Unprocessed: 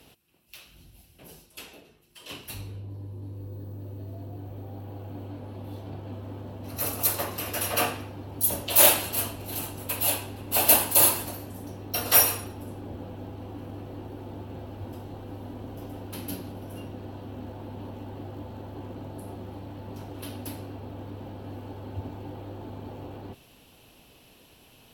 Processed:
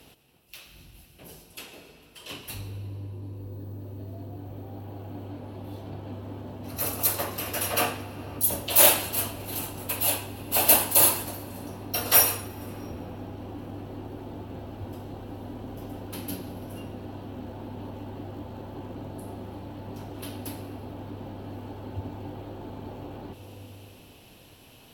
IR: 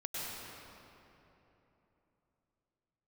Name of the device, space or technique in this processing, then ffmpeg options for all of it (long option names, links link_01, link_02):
ducked reverb: -filter_complex "[0:a]asplit=3[link_01][link_02][link_03];[1:a]atrim=start_sample=2205[link_04];[link_02][link_04]afir=irnorm=-1:irlink=0[link_05];[link_03]apad=whole_len=1099820[link_06];[link_05][link_06]sidechaincompress=threshold=-41dB:ratio=8:attack=16:release=400,volume=-8dB[link_07];[link_01][link_07]amix=inputs=2:normalize=0"